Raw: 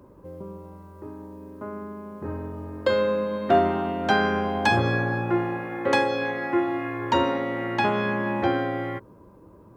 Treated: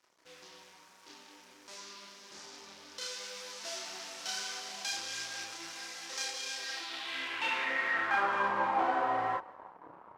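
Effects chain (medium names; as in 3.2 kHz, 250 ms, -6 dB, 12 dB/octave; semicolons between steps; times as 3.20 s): in parallel at -5.5 dB: fuzz box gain 41 dB, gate -47 dBFS; on the sum: chorus voices 6, 0.8 Hz, delay 30 ms, depth 3.5 ms; speed mistake 25 fps video run at 24 fps; on a send: thinning echo 182 ms, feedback 47%, level -23.5 dB; on the sum: band-pass sweep 5.7 kHz -> 960 Hz, 6.55–8.59 s; trim -2.5 dB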